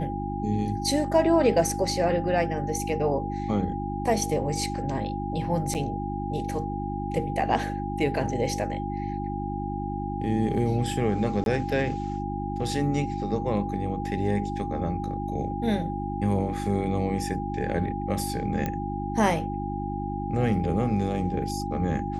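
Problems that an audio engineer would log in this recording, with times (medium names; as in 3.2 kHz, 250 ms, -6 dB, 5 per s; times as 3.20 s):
hum 50 Hz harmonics 7 -32 dBFS
whine 810 Hz -33 dBFS
5.74–5.75 s: dropout 8.1 ms
11.44–11.46 s: dropout 22 ms
18.66 s: pop -15 dBFS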